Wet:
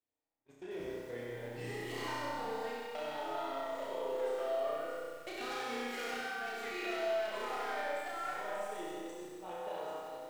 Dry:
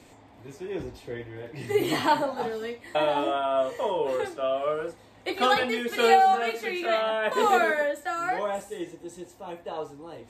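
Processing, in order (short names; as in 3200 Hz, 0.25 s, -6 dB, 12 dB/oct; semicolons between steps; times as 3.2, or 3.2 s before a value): self-modulated delay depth 0.26 ms; gate -39 dBFS, range -38 dB; tone controls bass -7 dB, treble 0 dB; compressor 12:1, threshold -34 dBFS, peak gain reduction 19.5 dB; hard clip -30.5 dBFS, distortion -22 dB; flutter echo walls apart 5.7 m, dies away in 0.88 s; on a send at -1 dB: reverb RT60 1.3 s, pre-delay 45 ms; on the sum: lo-fi delay 92 ms, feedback 80%, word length 8-bit, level -9 dB; gain -8 dB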